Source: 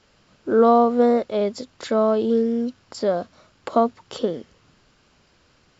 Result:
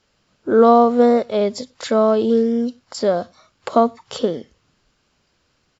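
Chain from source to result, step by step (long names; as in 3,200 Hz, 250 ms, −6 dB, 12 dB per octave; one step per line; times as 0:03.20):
noise reduction from a noise print of the clip's start 10 dB
high-shelf EQ 4,700 Hz +4.5 dB
slap from a distant wall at 17 metres, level −29 dB
level +3.5 dB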